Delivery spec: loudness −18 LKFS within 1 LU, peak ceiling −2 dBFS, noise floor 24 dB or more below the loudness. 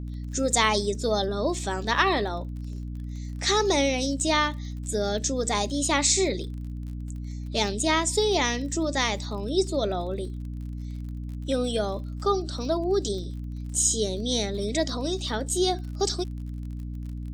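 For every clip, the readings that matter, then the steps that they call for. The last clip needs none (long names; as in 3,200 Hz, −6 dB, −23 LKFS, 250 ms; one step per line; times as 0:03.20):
crackle rate 39 per second; mains hum 60 Hz; hum harmonics up to 300 Hz; level of the hum −31 dBFS; integrated loudness −26.5 LKFS; sample peak −5.5 dBFS; target loudness −18.0 LKFS
→ click removal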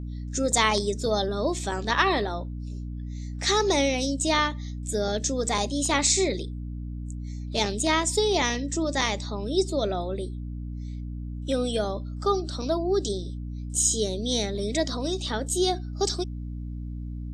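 crackle rate 0.17 per second; mains hum 60 Hz; hum harmonics up to 300 Hz; level of the hum −31 dBFS
→ mains-hum notches 60/120/180/240/300 Hz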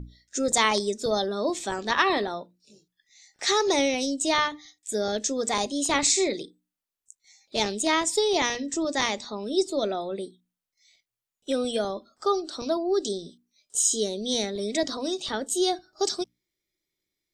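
mains hum none found; integrated loudness −26.0 LKFS; sample peak −6.0 dBFS; target loudness −18.0 LKFS
→ level +8 dB
brickwall limiter −2 dBFS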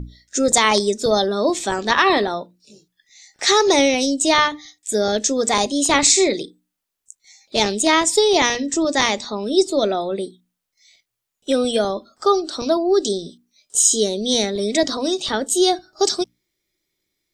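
integrated loudness −18.5 LKFS; sample peak −2.0 dBFS; background noise floor −80 dBFS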